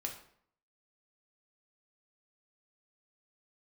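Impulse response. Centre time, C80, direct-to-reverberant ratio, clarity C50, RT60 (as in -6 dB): 20 ms, 11.5 dB, 1.0 dB, 8.0 dB, 0.60 s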